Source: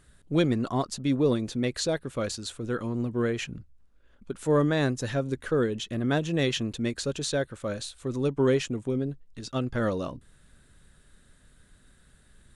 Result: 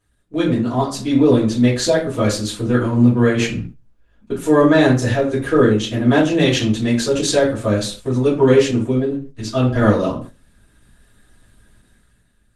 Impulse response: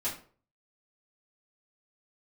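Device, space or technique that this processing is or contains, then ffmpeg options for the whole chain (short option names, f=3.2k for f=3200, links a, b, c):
speakerphone in a meeting room: -filter_complex "[1:a]atrim=start_sample=2205[a];[0:a][a]afir=irnorm=-1:irlink=0,dynaudnorm=f=110:g=13:m=12dB,agate=range=-9dB:threshold=-32dB:ratio=16:detection=peak" -ar 48000 -c:a libopus -b:a 20k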